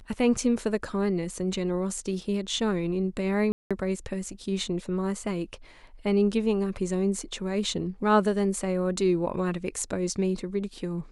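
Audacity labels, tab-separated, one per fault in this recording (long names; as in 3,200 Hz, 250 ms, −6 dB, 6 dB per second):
3.520000	3.710000	drop-out 186 ms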